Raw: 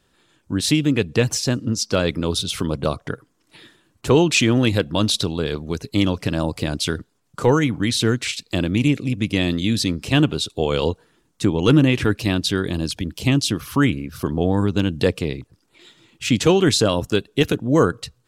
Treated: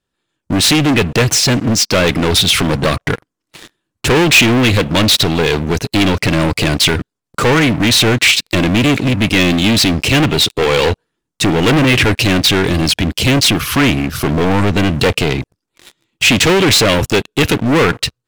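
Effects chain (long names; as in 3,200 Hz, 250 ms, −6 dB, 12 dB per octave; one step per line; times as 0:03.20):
leveller curve on the samples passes 5
dynamic equaliser 2,400 Hz, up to +7 dB, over −29 dBFS, Q 1.1
level −3.5 dB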